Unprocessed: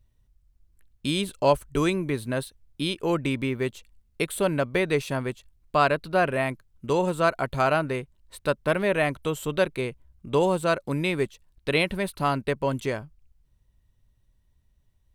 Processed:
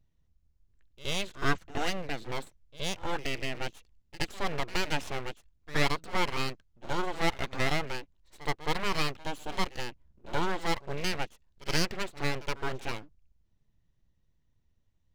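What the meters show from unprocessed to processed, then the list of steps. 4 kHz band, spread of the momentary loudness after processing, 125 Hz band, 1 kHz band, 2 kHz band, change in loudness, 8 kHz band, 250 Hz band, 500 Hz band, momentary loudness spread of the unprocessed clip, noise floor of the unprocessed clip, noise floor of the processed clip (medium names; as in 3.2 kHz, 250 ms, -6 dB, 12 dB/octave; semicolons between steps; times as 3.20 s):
-0.5 dB, 10 LU, -7.5 dB, -6.5 dB, -4.5 dB, -7.5 dB, -1.5 dB, -9.5 dB, -12.0 dB, 9 LU, -67 dBFS, -71 dBFS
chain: dynamic bell 2.2 kHz, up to +6 dB, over -39 dBFS, Q 0.91; resampled via 16 kHz; pre-echo 71 ms -17 dB; full-wave rectifier; trim -5.5 dB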